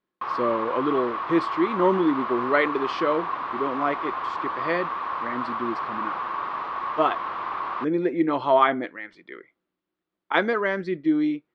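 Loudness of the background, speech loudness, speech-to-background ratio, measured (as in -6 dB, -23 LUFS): -29.5 LUFS, -25.0 LUFS, 4.5 dB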